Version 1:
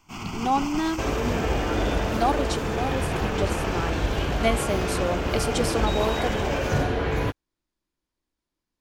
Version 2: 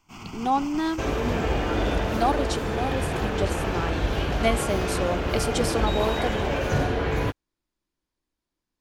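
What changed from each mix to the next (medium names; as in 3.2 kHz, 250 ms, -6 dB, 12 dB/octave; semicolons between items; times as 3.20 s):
first sound -6.0 dB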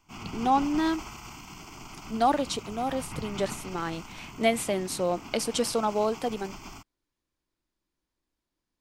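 second sound: muted; reverb: off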